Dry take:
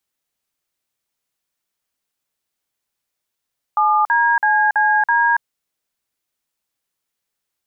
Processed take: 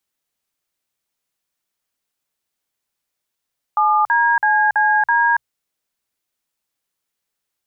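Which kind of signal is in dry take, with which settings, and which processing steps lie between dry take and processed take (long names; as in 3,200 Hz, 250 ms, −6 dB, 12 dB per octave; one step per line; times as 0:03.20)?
touch tones "7DCCD", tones 281 ms, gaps 48 ms, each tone −15 dBFS
mains-hum notches 60/120 Hz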